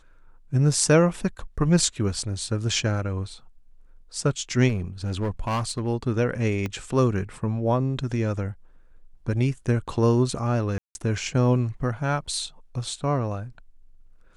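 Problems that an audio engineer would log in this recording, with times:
0:04.68–0:05.88: clipping −22 dBFS
0:06.66: click −16 dBFS
0:10.78–0:10.95: drop-out 171 ms

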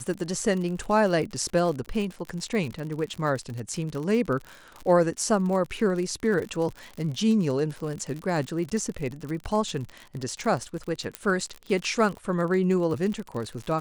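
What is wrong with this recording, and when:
surface crackle 62 per second −31 dBFS
0:11.15: click −13 dBFS

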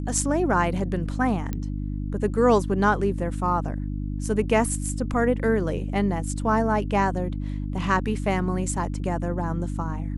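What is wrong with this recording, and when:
mains hum 50 Hz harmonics 6 −29 dBFS
0:01.53: click −16 dBFS

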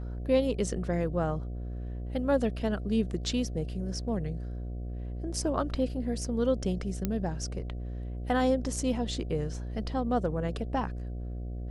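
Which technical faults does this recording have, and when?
mains buzz 60 Hz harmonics 12 −36 dBFS
0:07.05: click −15 dBFS

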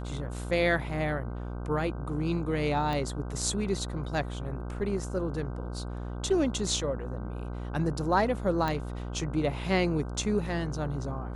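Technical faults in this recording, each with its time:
mains buzz 60 Hz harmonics 26 −36 dBFS
0:02.93: click −20 dBFS
0:08.68: click −17 dBFS

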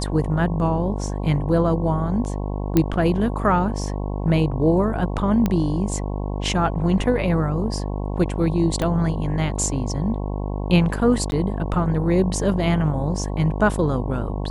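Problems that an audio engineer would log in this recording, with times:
mains buzz 50 Hz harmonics 22 −26 dBFS
0:02.77: click −5 dBFS
0:05.46: click −9 dBFS
0:08.82: click −11 dBFS
0:11.31–0:11.32: drop-out 11 ms

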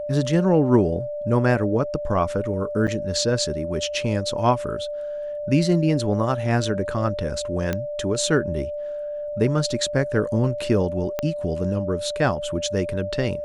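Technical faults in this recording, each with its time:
whistle 590 Hz −27 dBFS
0:02.87–0:02.88: drop-out 7.7 ms
0:07.73: click −11 dBFS
0:11.19: click −11 dBFS

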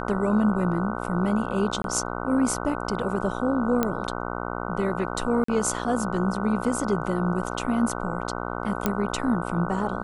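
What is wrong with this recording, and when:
mains buzz 60 Hz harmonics 25 −31 dBFS
0:01.82–0:01.84: drop-out 22 ms
0:03.83: click −9 dBFS
0:05.44–0:05.48: drop-out 44 ms
0:08.86: click −8 dBFS

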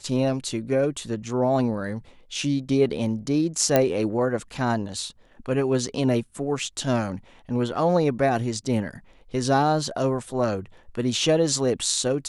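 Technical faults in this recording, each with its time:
0:03.76: click −5 dBFS

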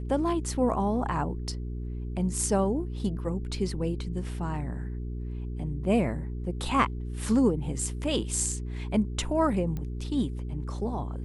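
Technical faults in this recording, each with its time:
mains hum 60 Hz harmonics 7 −34 dBFS
0:09.77: click −23 dBFS

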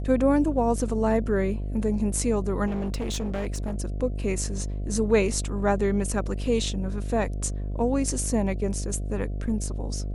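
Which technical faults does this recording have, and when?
mains buzz 50 Hz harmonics 14 −30 dBFS
0:02.66–0:03.76: clipping −25 dBFS

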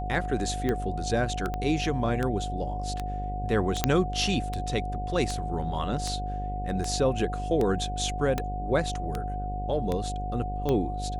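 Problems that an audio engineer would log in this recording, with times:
mains buzz 50 Hz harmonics 17 −33 dBFS
scratch tick 78 rpm −16 dBFS
whistle 730 Hz −34 dBFS
0:01.54: click −19 dBFS
0:03.84: click −6 dBFS
0:08.38: click

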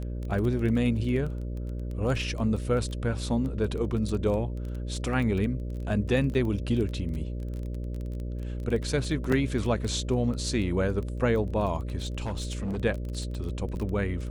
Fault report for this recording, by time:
mains buzz 60 Hz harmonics 10 −33 dBFS
surface crackle 15 per second −32 dBFS
0:06.34–0:06.35: drop-out 7.1 ms
0:09.32: drop-out 4 ms
0:11.98–0:12.78: clipping −27.5 dBFS

